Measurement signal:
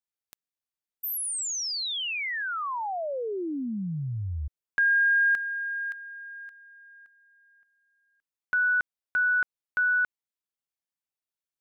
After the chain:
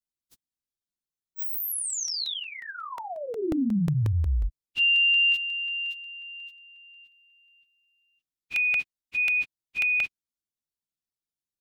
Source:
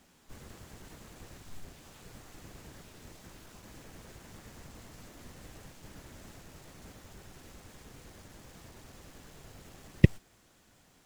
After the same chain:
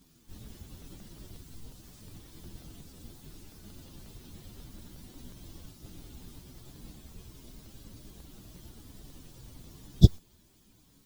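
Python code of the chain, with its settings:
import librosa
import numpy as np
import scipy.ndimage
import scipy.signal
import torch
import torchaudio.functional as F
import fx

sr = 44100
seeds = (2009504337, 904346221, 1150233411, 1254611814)

y = fx.partial_stretch(x, sr, pct=129)
y = fx.band_shelf(y, sr, hz=1100.0, db=-9.5, octaves=2.9)
y = fx.buffer_crackle(y, sr, first_s=0.46, period_s=0.18, block=64, kind='repeat')
y = y * librosa.db_to_amplitude(8.0)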